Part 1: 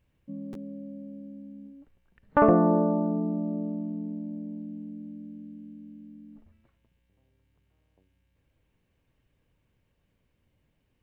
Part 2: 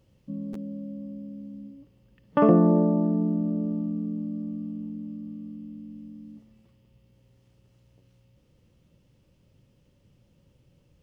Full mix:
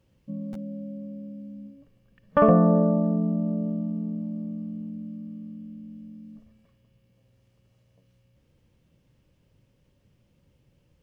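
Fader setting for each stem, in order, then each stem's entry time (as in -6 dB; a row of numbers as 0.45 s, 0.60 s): -1.0 dB, -3.0 dB; 0.00 s, 0.00 s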